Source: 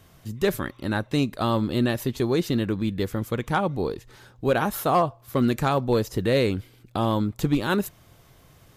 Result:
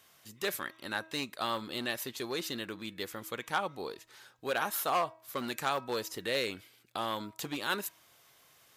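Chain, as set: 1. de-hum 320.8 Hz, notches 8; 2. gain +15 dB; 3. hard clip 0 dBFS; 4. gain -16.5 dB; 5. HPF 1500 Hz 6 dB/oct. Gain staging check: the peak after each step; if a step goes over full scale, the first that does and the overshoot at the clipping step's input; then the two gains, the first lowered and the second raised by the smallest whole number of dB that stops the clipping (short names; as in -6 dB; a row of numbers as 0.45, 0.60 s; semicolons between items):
-11.5, +3.5, 0.0, -16.5, -15.0 dBFS; step 2, 3.5 dB; step 2 +11 dB, step 4 -12.5 dB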